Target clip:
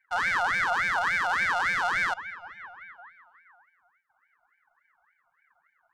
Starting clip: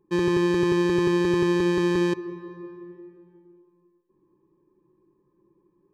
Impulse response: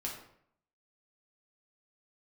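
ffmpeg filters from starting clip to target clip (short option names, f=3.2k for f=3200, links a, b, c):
-filter_complex "[0:a]equalizer=f=860:t=o:w=1:g=-13,asettb=1/sr,asplit=3[a][b][c];[a]atrim=end=0.684[d];[b]atrim=start=0.68:end=1.35,asetpts=PTS-STARTPTS,afade=t=in:d=0.004:c=qsin,afade=t=out:st=0.666:d=0.004:c=qsin,aeval=exprs='sgn(val(0))*max(abs(val(0))-0.00376,0)':c=same[e];[c]atrim=start=1.346[f];[d][e]acrossfade=d=0.004:c1=hsin:c2=qsin[g];[g][f]acrossfade=d=0.004:c1=qsin:c2=hsin,aeval=exprs='val(0)*sin(2*PI*1500*n/s+1500*0.3/3.5*sin(2*PI*3.5*n/s))':c=same"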